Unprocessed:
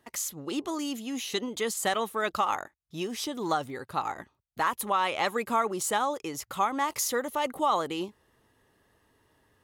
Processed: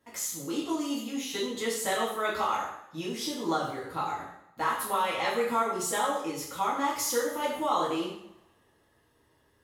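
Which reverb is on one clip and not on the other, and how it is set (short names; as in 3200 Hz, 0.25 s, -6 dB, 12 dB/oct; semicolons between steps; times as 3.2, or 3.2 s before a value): two-slope reverb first 0.68 s, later 1.8 s, from -25 dB, DRR -7 dB; gain -8.5 dB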